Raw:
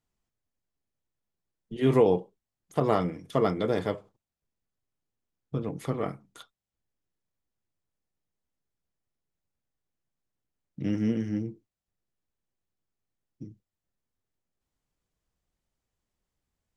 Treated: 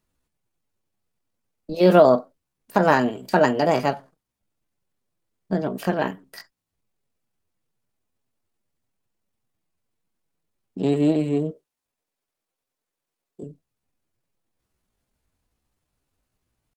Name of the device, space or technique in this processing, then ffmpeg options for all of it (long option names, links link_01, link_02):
chipmunk voice: -filter_complex "[0:a]asetrate=60591,aresample=44100,atempo=0.727827,asettb=1/sr,asplit=3[link_01][link_02][link_03];[link_01]atrim=end=11.514[link_04];[link_02]atrim=start=11.51:end=13.43,asetpts=PTS-STARTPTS,afade=type=in:duration=0.004:curve=qsin,afade=type=out:start_time=1.916:duration=0.004:curve=qsin,bass=frequency=250:gain=-14,treble=frequency=4000:gain=1[link_05];[link_03]atrim=start=13.426[link_06];[link_04][link_05]acrossfade=duration=0.004:curve1=hsin:curve2=qsin[link_07];[link_07][link_06]acrossfade=duration=0.004:curve1=qsin:curve2=hsin,volume=7.5dB"